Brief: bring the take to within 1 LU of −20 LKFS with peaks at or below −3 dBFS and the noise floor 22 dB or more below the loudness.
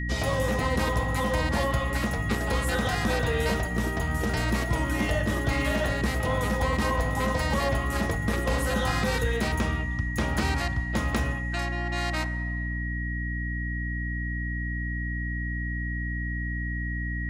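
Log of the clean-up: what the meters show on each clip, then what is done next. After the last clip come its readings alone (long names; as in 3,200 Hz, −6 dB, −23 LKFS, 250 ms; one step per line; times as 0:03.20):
mains hum 60 Hz; hum harmonics up to 300 Hz; level of the hum −28 dBFS; interfering tone 1,900 Hz; level of the tone −34 dBFS; integrated loudness −28.0 LKFS; sample peak −13.5 dBFS; target loudness −20.0 LKFS
→ hum removal 60 Hz, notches 5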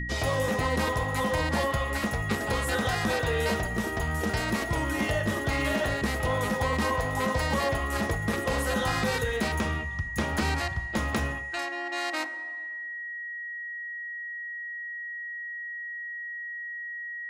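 mains hum none found; interfering tone 1,900 Hz; level of the tone −34 dBFS
→ notch filter 1,900 Hz, Q 30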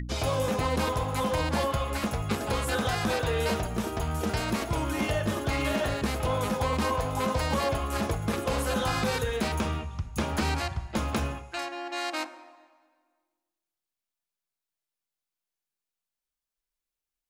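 interfering tone none found; integrated loudness −29.0 LKFS; sample peak −16.5 dBFS; target loudness −20.0 LKFS
→ level +9 dB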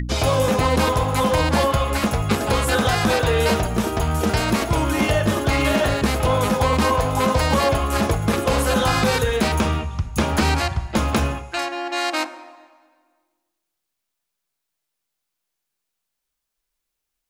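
integrated loudness −20.0 LKFS; sample peak −7.5 dBFS; background noise floor −80 dBFS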